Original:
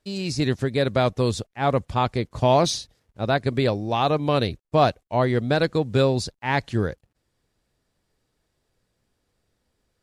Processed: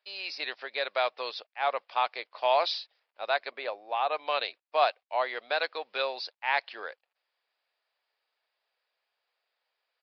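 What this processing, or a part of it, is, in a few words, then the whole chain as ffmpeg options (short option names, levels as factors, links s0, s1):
musical greeting card: -filter_complex "[0:a]asplit=3[s0][s1][s2];[s0]afade=t=out:st=3.5:d=0.02[s3];[s1]lowpass=f=1400:p=1,afade=t=in:st=3.5:d=0.02,afade=t=out:st=4.1:d=0.02[s4];[s2]afade=t=in:st=4.1:d=0.02[s5];[s3][s4][s5]amix=inputs=3:normalize=0,aresample=11025,aresample=44100,highpass=f=640:w=0.5412,highpass=f=640:w=1.3066,equalizer=f=2500:t=o:w=0.47:g=5,volume=0.668"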